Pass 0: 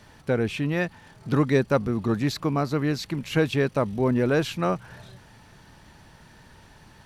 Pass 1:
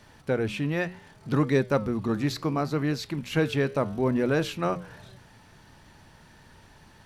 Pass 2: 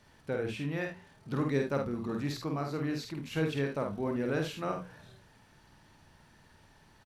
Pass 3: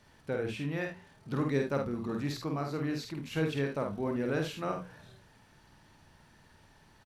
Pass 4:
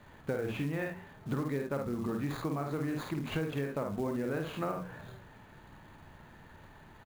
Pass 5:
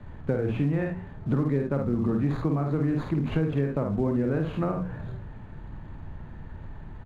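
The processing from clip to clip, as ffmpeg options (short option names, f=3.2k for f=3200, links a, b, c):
-af "bandreject=f=60:t=h:w=6,bandreject=f=120:t=h:w=6,bandreject=f=180:t=h:w=6,flanger=delay=7.2:depth=6.6:regen=-87:speed=0.68:shape=triangular,volume=2.5dB"
-af "aecho=1:1:50|76:0.631|0.266,volume=-8.5dB"
-af anull
-filter_complex "[0:a]acrossover=split=3100[a][b];[b]acrusher=samples=16:mix=1:aa=0.000001[c];[a][c]amix=inputs=2:normalize=0,acompressor=threshold=-37dB:ratio=8,acrusher=bits=6:mode=log:mix=0:aa=0.000001,volume=6.5dB"
-filter_complex "[0:a]aemphasis=mode=reproduction:type=riaa,acrossover=split=170|2600[a][b][c];[a]asoftclip=type=tanh:threshold=-32.5dB[d];[d][b][c]amix=inputs=3:normalize=0,volume=3dB"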